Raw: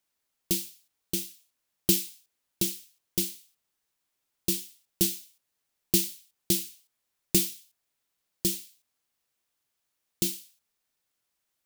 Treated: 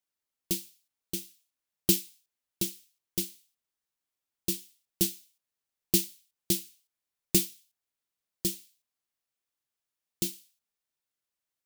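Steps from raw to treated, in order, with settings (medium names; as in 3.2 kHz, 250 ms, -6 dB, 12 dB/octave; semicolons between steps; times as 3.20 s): upward expansion 1.5:1, over -36 dBFS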